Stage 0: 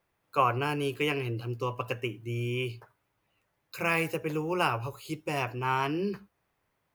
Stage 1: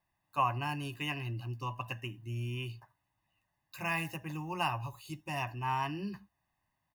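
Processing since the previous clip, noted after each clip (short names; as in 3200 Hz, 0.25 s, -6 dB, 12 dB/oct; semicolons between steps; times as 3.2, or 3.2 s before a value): comb 1.1 ms, depth 90%; gain -8 dB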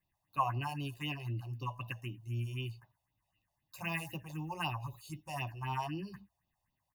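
phaser stages 4, 3.9 Hz, lowest notch 230–1800 Hz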